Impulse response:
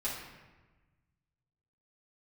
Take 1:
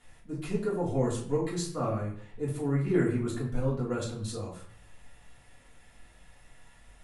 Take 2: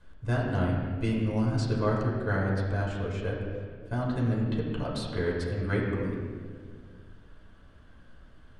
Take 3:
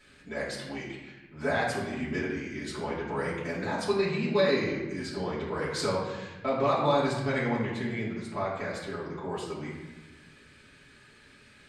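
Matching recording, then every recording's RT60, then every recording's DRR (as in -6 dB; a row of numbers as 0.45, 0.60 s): 3; 0.55, 1.9, 1.2 s; -7.5, -4.5, -9.0 dB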